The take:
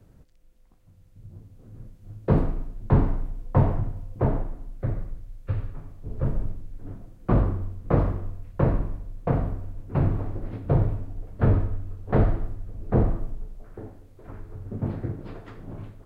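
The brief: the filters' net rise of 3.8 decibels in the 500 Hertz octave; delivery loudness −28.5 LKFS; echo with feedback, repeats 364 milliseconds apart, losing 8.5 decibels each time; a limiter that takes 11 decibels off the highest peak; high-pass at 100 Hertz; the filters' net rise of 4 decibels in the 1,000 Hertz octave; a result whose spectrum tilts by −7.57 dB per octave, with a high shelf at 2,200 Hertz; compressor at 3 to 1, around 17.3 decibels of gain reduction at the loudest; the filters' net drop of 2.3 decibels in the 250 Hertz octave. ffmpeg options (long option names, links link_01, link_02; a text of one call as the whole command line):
ffmpeg -i in.wav -af "highpass=100,equalizer=frequency=250:width_type=o:gain=-4.5,equalizer=frequency=500:width_type=o:gain=5,equalizer=frequency=1000:width_type=o:gain=5,highshelf=frequency=2200:gain=-7.5,acompressor=threshold=-41dB:ratio=3,alimiter=level_in=9dB:limit=-24dB:level=0:latency=1,volume=-9dB,aecho=1:1:364|728|1092|1456:0.376|0.143|0.0543|0.0206,volume=16.5dB" out.wav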